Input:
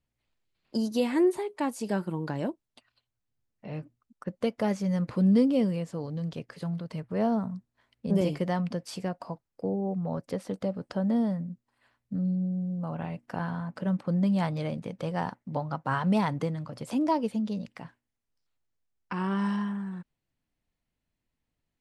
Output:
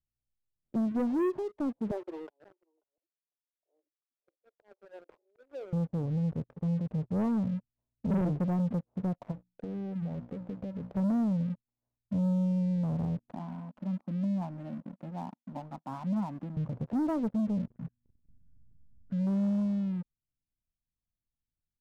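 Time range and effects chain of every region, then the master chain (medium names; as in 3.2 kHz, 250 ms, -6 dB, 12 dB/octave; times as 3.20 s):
1.91–5.73 s: steep high-pass 340 Hz 72 dB/octave + slow attack 630 ms + delay 538 ms -19.5 dB
9.31–10.97 s: hum notches 60/120/180/240/300 Hz + compression, threshold -36 dBFS
13.32–16.57 s: Chebyshev band-pass 230–3600 Hz, order 3 + static phaser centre 1.1 kHz, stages 4
17.70–19.27 s: brick-wall FIR band-stop 280–1400 Hz + upward compressor, threshold -45 dBFS
whole clip: inverse Chebyshev low-pass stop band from 3.2 kHz, stop band 70 dB; peaking EQ 550 Hz -13.5 dB 3 oct; waveshaping leveller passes 3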